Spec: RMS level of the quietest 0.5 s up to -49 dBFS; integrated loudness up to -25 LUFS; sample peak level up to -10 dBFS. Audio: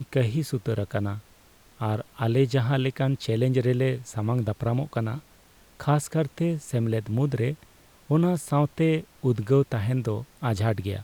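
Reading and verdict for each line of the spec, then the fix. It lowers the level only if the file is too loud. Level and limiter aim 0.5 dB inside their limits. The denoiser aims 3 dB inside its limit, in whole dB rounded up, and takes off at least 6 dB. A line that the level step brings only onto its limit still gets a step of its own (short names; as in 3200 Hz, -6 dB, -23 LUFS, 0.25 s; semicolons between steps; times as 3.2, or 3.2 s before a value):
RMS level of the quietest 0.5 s -55 dBFS: OK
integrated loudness -26.0 LUFS: OK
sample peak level -11.0 dBFS: OK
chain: none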